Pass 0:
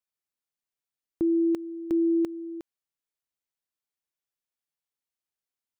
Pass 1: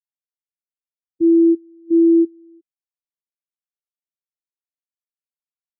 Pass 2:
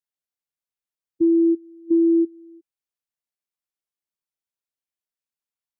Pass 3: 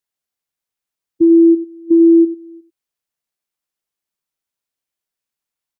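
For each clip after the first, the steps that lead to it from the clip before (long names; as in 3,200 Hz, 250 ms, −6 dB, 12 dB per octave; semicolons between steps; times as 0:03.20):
low shelf with overshoot 230 Hz +10 dB, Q 1.5; every bin expanded away from the loudest bin 2.5 to 1; level +6.5 dB
downward compressor, threshold −16 dBFS, peak gain reduction 5.5 dB; level +1 dB
slap from a distant wall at 16 metres, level −13 dB; level +7 dB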